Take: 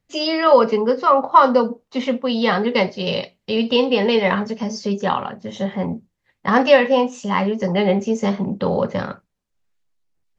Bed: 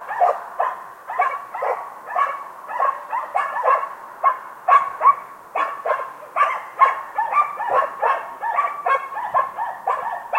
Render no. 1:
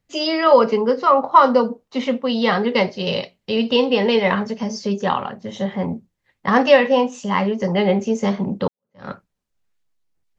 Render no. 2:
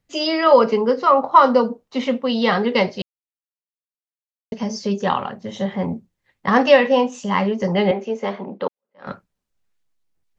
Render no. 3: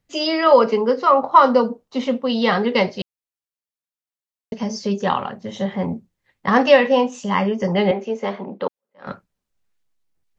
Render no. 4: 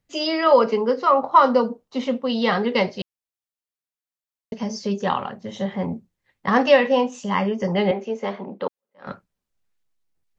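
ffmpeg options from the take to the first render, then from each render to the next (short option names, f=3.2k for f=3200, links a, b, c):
-filter_complex "[0:a]asplit=2[a][b];[a]atrim=end=8.68,asetpts=PTS-STARTPTS,afade=t=out:st=8.676:d=0.004:c=hsin[c];[b]atrim=start=8.68,asetpts=PTS-STARTPTS,afade=t=in:d=0.4:c=exp[d];[c][d]concat=n=2:v=0:a=1"
-filter_complex "[0:a]asettb=1/sr,asplit=3[a][b][c];[a]atrim=end=7.914[d];[b]atrim=start=7.91:end=9.07,asetpts=PTS-STARTPTS,afade=t=in:d=0.004:c=qsin,afade=t=out:st=1.156:d=0.004:c=qsin,highpass=370,lowpass=3.1k[e];[c]atrim=start=9.066[f];[d][e]acrossfade=d=0.004:c1=hsin:c2=qsin[g];[g][f]acrossfade=d=0.004:c1=qsin:c2=hsin,asplit=3[h][i][j];[h]atrim=end=3.02,asetpts=PTS-STARTPTS,afade=t=out:st=3.016:d=0.004:c=hsin[k];[i]atrim=start=3.02:end=4.52,asetpts=PTS-STARTPTS,volume=0[l];[j]atrim=start=4.52,asetpts=PTS-STARTPTS,afade=t=in:d=0.004:c=hsin[m];[k][l][m]concat=n=3:v=0:a=1"
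-filter_complex "[0:a]asettb=1/sr,asplit=3[a][b][c];[a]atrim=end=0.514[d];[b]atrim=start=0.51:end=1.23,asetpts=PTS-STARTPTS,afade=t=in:d=0.004:c=qsin,afade=t=out:st=0.716:d=0.004:c=qsin,highpass=170[e];[c]atrim=start=1.226[f];[d][e]acrossfade=d=0.004:c1=hsin:c2=qsin[g];[g][f]acrossfade=d=0.004:c1=qsin:c2=hsin,asettb=1/sr,asplit=3[h][i][j];[h]atrim=end=1.854[k];[i]atrim=start=1.85:end=2.3,asetpts=PTS-STARTPTS,afade=t=in:d=0.004:c=qsin,afade=t=out:st=0.446:d=0.004:c=qsin,equalizer=f=2.1k:w=1.5:g=-5[l];[j]atrim=start=2.296[m];[k][l]acrossfade=d=0.004:c1=hsin:c2=qsin[n];[n][m]acrossfade=d=0.004:c1=qsin:c2=hsin,asettb=1/sr,asplit=3[o][p][q];[o]atrim=end=7.354[r];[p]atrim=start=7.35:end=7.76,asetpts=PTS-STARTPTS,afade=t=in:d=0.004:c=qsin,afade=t=out:st=0.406:d=0.004:c=qsin,asuperstop=centerf=4100:order=20:qfactor=5.4[s];[q]atrim=start=7.756[t];[r][s]acrossfade=d=0.004:c1=hsin:c2=qsin[u];[u][t]acrossfade=d=0.004:c1=qsin:c2=hsin"
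-af "volume=-2.5dB"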